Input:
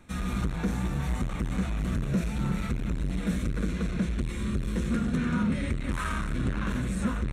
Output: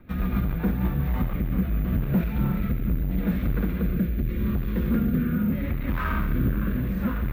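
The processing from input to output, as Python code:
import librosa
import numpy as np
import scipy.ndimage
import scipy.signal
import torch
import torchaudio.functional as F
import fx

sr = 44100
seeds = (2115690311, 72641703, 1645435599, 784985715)

p1 = fx.rider(x, sr, range_db=10, speed_s=0.5)
p2 = x + (p1 * 10.0 ** (-3.0 / 20.0))
p3 = np.clip(p2, -10.0 ** (-16.5 / 20.0), 10.0 ** (-16.5 / 20.0))
p4 = fx.rotary_switch(p3, sr, hz=7.5, then_hz=0.8, switch_at_s=0.39)
p5 = (np.kron(p4[::3], np.eye(3)[0]) * 3)[:len(p4)]
p6 = fx.air_absorb(p5, sr, metres=450.0)
p7 = p6 + fx.echo_thinned(p6, sr, ms=69, feedback_pct=81, hz=770.0, wet_db=-11, dry=0)
y = p7 * 10.0 ** (1.5 / 20.0)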